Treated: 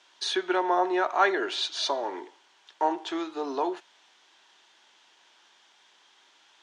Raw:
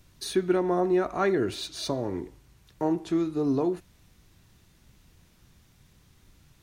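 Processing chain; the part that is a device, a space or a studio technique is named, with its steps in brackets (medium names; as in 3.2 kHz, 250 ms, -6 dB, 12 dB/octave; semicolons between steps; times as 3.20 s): phone speaker on a table (cabinet simulation 430–6900 Hz, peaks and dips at 490 Hz -7 dB, 890 Hz +8 dB, 1.6 kHz +5 dB, 3.2 kHz +9 dB); trim +3.5 dB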